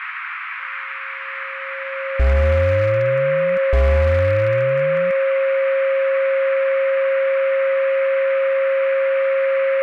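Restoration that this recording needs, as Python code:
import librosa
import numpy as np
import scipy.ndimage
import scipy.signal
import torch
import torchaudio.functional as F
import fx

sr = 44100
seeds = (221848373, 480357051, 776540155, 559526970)

y = fx.fix_declip(x, sr, threshold_db=-10.5)
y = fx.notch(y, sr, hz=540.0, q=30.0)
y = fx.noise_reduce(y, sr, print_start_s=0.78, print_end_s=1.28, reduce_db=30.0)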